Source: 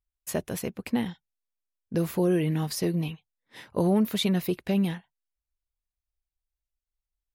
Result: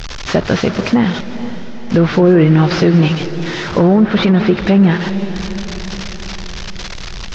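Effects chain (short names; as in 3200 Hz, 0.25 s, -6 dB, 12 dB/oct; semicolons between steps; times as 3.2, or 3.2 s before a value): delta modulation 32 kbps, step -38.5 dBFS; dynamic EQ 1400 Hz, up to +6 dB, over -54 dBFS, Q 2.7; on a send: diffused feedback echo 0.469 s, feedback 55%, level -16 dB; on the sum: treble ducked by the level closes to 1700 Hz, closed at -20 dBFS; maximiser +21 dB; warbling echo 0.168 s, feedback 52%, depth 162 cents, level -16 dB; gain -2 dB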